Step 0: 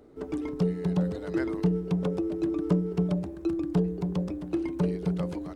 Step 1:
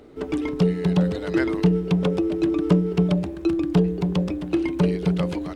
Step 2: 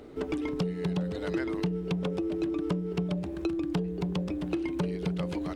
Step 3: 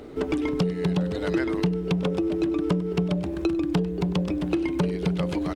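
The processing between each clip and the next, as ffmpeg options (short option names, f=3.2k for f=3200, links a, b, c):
-af "equalizer=f=2.9k:w=0.93:g=7.5,volume=6.5dB"
-af "acompressor=threshold=-29dB:ratio=4"
-af "aecho=1:1:98:0.106,volume=6dB"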